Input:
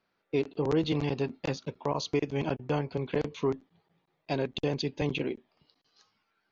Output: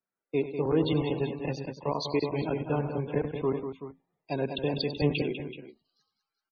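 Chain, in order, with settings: multi-tap echo 97/198/380/394 ms -11/-7/-10/-18.5 dB; loudest bins only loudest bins 64; three bands expanded up and down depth 40%

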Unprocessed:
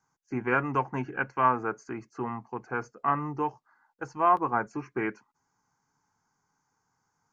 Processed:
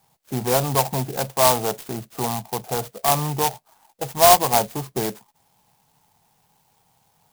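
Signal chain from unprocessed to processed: FFT filter 190 Hz 0 dB, 310 Hz -11 dB, 660 Hz +8 dB, 1.5 kHz -14 dB, 3.1 kHz +3 dB; in parallel at +1 dB: peak limiter -33.5 dBFS, peak gain reduction 22 dB; on the sum: sampling jitter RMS 0.12 ms; trim +7 dB

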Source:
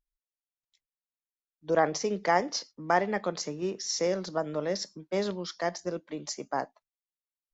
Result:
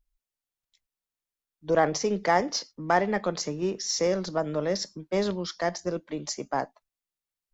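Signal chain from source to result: bass shelf 85 Hz +11 dB; in parallel at -7 dB: saturation -23.5 dBFS, distortion -10 dB

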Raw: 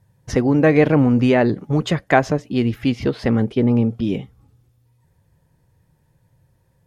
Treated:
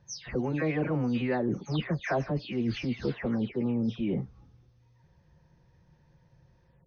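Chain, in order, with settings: delay that grows with frequency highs early, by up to 257 ms; reverse; compression 4:1, threshold -28 dBFS, peak gain reduction 15 dB; reverse; brick-wall FIR low-pass 6.5 kHz

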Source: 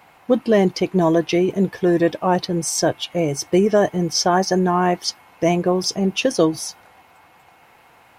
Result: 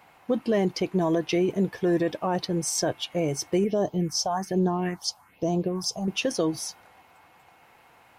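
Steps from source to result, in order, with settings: peak limiter -10.5 dBFS, peak gain reduction 5.5 dB; 3.64–6.08 s: phase shifter stages 4, 1.2 Hz, lowest notch 300–2200 Hz; trim -5 dB

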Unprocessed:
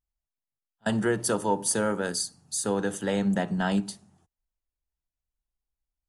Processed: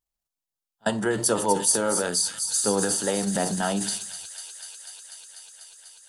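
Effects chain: peaking EQ 2 kHz -5.5 dB 1.4 oct; on a send: feedback echo behind a high-pass 246 ms, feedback 84%, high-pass 3.4 kHz, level -7 dB; on the sum: flange 0.79 Hz, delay 8.3 ms, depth 4.8 ms, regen +73%; transient shaper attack +4 dB, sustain +8 dB; bass shelf 270 Hz -10.5 dB; trim +8.5 dB

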